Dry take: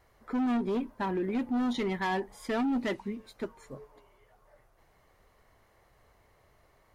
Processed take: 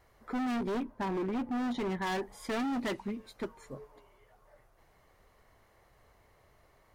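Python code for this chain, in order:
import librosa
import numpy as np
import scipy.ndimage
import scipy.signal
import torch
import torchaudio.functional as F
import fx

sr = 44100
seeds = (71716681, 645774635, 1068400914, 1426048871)

y = fx.high_shelf(x, sr, hz=2200.0, db=-9.5, at=(0.83, 2.07))
y = 10.0 ** (-28.5 / 20.0) * (np.abs((y / 10.0 ** (-28.5 / 20.0) + 3.0) % 4.0 - 2.0) - 1.0)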